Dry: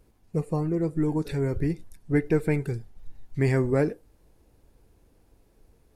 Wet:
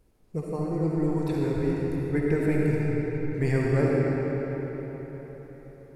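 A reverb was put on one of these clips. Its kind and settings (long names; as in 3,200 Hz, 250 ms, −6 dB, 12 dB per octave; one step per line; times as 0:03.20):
comb and all-pass reverb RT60 4.7 s, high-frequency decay 0.7×, pre-delay 25 ms, DRR −4.5 dB
level −4.5 dB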